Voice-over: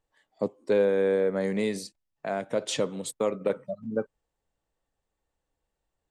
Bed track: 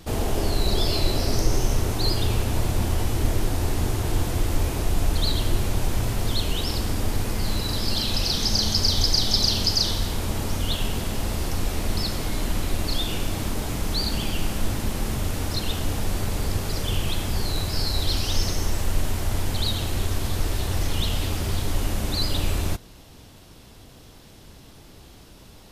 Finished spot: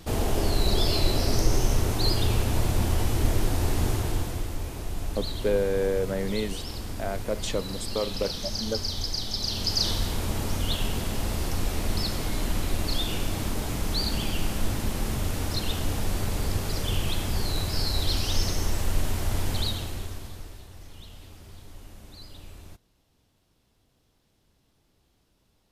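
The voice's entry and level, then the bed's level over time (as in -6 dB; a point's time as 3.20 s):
4.75 s, -2.0 dB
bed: 3.93 s -1 dB
4.56 s -9.5 dB
9.38 s -9.5 dB
9.87 s -2 dB
19.58 s -2 dB
20.70 s -21 dB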